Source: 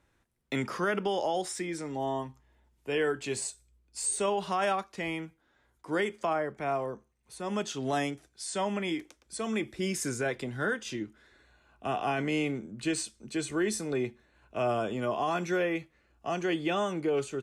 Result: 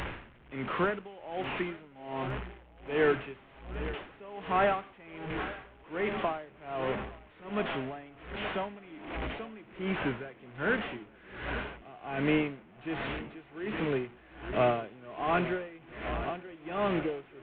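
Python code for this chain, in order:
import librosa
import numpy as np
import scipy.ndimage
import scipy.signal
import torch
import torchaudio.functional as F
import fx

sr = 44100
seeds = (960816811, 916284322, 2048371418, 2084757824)

p1 = fx.delta_mod(x, sr, bps=16000, step_db=-33.0)
p2 = p1 + fx.echo_swing(p1, sr, ms=1440, ratio=1.5, feedback_pct=67, wet_db=-14.5, dry=0)
p3 = p2 * 10.0 ** (-23 * (0.5 - 0.5 * np.cos(2.0 * np.pi * 1.3 * np.arange(len(p2)) / sr)) / 20.0)
y = p3 * librosa.db_to_amplitude(4.0)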